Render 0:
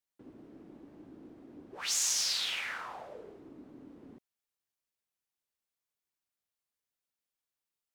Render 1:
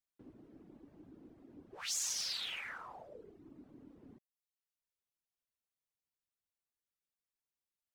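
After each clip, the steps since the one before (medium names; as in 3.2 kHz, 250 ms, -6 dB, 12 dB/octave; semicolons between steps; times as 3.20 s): reverb removal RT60 0.76 s; bass shelf 170 Hz +7.5 dB; trim -5.5 dB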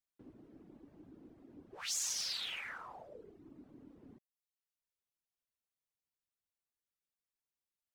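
no audible change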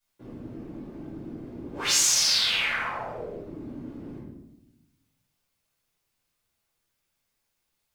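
simulated room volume 330 m³, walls mixed, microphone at 5.3 m; trim +4.5 dB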